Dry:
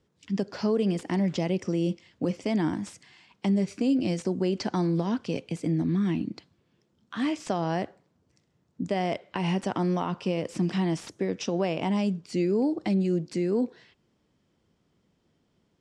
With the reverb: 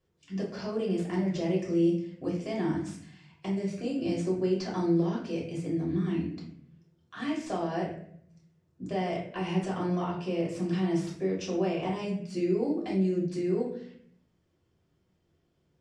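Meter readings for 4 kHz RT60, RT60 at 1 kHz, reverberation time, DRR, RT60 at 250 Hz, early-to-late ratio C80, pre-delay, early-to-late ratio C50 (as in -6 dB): 0.45 s, 0.55 s, 0.65 s, -5.0 dB, 0.90 s, 9.5 dB, 3 ms, 5.0 dB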